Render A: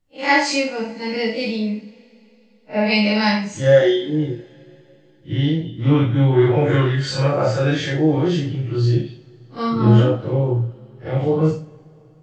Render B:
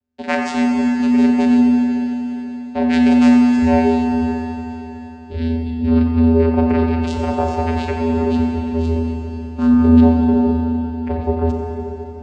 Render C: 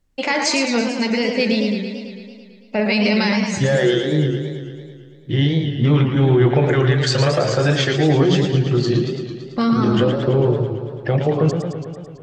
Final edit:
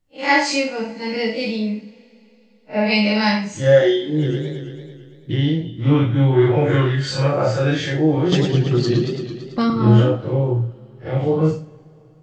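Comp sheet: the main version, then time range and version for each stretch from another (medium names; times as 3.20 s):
A
4.22–5.38 s: from C, crossfade 0.16 s
8.32–9.70 s: from C
not used: B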